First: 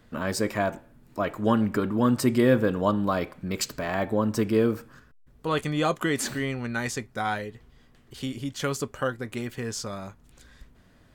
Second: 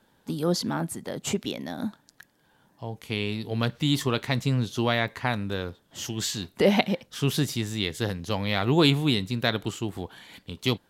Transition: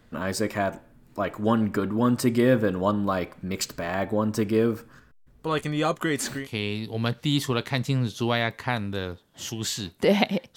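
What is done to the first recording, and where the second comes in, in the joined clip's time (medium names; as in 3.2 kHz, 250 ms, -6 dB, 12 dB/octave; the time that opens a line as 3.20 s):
first
6.42 s: go over to second from 2.99 s, crossfade 0.12 s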